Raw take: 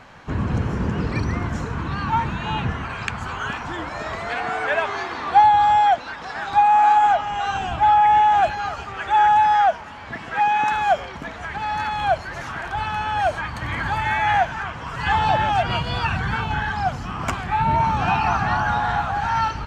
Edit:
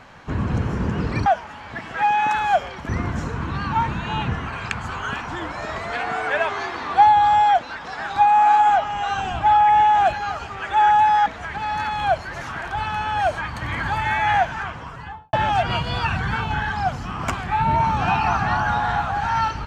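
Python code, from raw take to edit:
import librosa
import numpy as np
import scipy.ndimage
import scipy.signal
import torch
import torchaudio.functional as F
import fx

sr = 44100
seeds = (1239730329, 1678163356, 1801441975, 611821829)

y = fx.studio_fade_out(x, sr, start_s=14.62, length_s=0.71)
y = fx.edit(y, sr, fx.move(start_s=9.63, length_s=1.63, to_s=1.26), tone=tone)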